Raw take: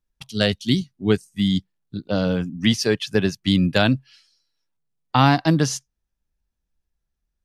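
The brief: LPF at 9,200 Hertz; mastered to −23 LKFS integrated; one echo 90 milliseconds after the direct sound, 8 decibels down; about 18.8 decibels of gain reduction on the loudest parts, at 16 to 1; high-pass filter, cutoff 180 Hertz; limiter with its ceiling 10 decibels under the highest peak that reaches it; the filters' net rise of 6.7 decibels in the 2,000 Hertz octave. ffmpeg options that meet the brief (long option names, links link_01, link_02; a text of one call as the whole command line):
ffmpeg -i in.wav -af "highpass=180,lowpass=9200,equalizer=frequency=2000:width_type=o:gain=9,acompressor=threshold=-30dB:ratio=16,alimiter=limit=-22.5dB:level=0:latency=1,aecho=1:1:90:0.398,volume=13.5dB" out.wav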